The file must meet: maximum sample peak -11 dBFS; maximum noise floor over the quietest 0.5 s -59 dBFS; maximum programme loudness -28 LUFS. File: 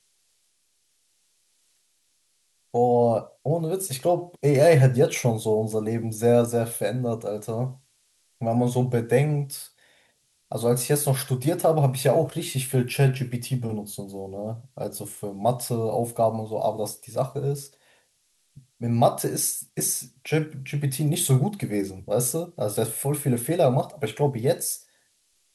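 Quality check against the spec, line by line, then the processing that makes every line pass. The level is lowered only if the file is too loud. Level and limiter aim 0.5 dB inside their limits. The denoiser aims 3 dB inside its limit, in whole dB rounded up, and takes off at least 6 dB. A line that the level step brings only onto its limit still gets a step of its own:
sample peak -6.0 dBFS: fail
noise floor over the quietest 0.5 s -69 dBFS: OK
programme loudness -24.5 LUFS: fail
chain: gain -4 dB; limiter -11.5 dBFS

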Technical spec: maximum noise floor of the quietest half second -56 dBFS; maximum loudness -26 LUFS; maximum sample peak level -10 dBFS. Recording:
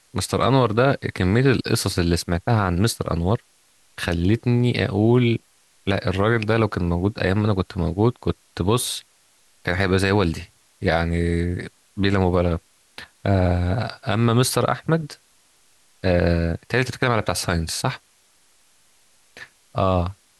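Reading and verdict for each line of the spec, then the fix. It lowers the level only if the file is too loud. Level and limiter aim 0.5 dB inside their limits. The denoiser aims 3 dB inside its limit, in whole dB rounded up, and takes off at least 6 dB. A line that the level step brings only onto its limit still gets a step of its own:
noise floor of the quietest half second -59 dBFS: OK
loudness -21.5 LUFS: fail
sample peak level -6.0 dBFS: fail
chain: gain -5 dB

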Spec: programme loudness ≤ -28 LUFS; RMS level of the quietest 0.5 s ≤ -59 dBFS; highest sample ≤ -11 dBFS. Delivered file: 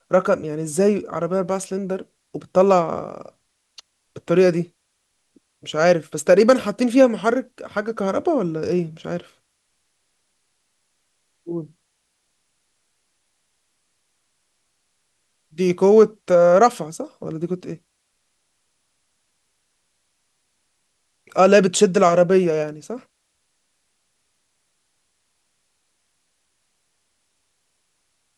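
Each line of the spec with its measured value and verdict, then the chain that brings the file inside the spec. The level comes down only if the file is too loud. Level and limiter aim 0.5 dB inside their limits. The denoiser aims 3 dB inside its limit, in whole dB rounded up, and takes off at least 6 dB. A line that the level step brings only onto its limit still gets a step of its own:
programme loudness -19.0 LUFS: fail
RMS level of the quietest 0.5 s -71 dBFS: OK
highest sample -3.0 dBFS: fail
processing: gain -9.5 dB

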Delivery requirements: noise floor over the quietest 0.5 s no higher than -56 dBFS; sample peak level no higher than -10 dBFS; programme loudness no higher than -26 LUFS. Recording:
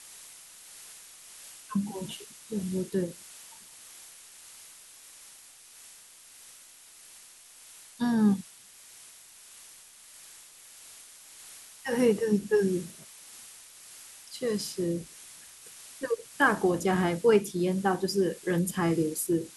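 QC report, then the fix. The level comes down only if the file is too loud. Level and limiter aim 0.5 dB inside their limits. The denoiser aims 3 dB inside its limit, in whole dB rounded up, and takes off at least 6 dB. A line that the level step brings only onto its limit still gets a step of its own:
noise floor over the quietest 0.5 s -53 dBFS: fail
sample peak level -9.0 dBFS: fail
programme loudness -28.5 LUFS: OK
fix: denoiser 6 dB, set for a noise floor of -53 dBFS; limiter -10.5 dBFS

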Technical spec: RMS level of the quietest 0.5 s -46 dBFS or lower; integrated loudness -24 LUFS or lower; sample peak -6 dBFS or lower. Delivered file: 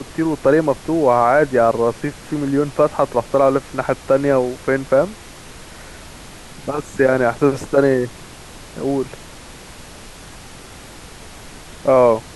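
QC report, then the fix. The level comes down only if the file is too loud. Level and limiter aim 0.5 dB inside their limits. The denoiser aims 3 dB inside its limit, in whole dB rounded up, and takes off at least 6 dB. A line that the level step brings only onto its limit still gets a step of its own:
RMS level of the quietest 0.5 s -38 dBFS: fail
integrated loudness -17.5 LUFS: fail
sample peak -3.0 dBFS: fail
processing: denoiser 6 dB, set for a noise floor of -38 dBFS; gain -7 dB

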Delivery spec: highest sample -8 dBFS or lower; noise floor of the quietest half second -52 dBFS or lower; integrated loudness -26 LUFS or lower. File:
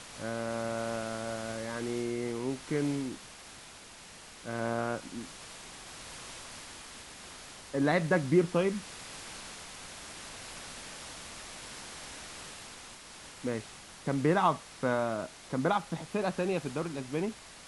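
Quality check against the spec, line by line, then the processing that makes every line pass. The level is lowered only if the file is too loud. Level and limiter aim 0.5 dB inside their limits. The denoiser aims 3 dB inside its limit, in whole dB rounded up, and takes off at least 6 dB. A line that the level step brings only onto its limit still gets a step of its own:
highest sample -14.0 dBFS: OK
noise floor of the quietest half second -50 dBFS: fail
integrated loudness -34.0 LUFS: OK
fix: denoiser 6 dB, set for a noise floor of -50 dBFS

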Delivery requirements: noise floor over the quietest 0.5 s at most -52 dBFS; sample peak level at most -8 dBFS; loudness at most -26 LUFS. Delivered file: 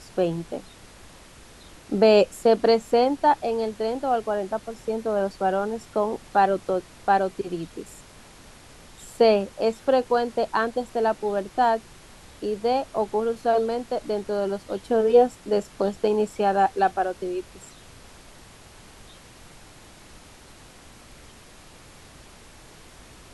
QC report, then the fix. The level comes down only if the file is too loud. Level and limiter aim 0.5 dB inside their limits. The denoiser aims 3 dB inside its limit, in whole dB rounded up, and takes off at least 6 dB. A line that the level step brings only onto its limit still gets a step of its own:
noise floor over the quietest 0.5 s -48 dBFS: fail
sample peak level -6.5 dBFS: fail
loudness -23.5 LUFS: fail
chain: denoiser 6 dB, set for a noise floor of -48 dBFS; gain -3 dB

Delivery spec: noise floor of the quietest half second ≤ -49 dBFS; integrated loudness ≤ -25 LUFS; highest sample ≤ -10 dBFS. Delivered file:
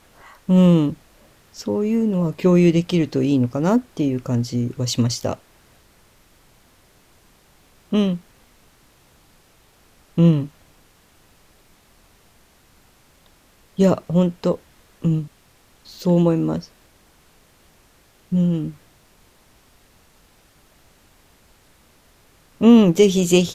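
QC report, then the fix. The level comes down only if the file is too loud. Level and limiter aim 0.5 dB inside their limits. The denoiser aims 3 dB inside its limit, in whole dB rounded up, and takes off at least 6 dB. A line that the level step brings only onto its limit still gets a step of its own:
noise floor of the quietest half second -55 dBFS: OK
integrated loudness -19.0 LUFS: fail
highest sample -4.0 dBFS: fail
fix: gain -6.5 dB

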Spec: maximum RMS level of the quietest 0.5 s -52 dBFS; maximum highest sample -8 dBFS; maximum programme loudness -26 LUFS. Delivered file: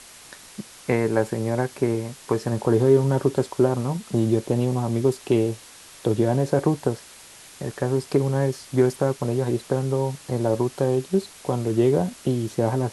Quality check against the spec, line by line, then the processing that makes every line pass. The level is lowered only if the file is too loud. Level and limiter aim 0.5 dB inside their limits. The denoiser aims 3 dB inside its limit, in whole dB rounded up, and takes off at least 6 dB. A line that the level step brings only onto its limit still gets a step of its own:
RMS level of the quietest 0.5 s -46 dBFS: fail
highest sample -6.5 dBFS: fail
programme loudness -23.5 LUFS: fail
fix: denoiser 6 dB, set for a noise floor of -46 dBFS; gain -3 dB

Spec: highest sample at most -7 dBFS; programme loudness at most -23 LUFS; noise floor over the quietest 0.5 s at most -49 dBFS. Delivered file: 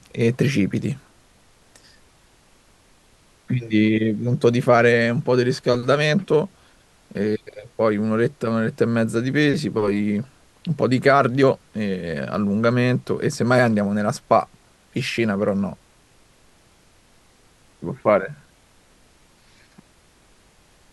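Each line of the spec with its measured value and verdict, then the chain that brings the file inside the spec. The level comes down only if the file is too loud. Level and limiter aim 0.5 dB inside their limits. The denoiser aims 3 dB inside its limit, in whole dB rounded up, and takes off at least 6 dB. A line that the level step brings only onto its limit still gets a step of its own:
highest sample -3.0 dBFS: fail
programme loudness -20.5 LUFS: fail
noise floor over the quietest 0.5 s -56 dBFS: OK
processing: gain -3 dB; limiter -7.5 dBFS

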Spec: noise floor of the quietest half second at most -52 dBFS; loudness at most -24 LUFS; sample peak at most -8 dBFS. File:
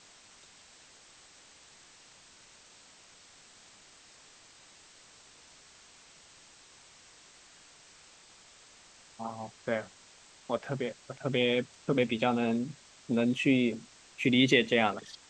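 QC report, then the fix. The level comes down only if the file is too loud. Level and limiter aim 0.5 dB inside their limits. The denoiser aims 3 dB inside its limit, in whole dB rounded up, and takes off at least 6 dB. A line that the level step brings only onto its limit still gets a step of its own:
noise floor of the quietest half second -57 dBFS: OK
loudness -29.5 LUFS: OK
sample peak -8.5 dBFS: OK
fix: none

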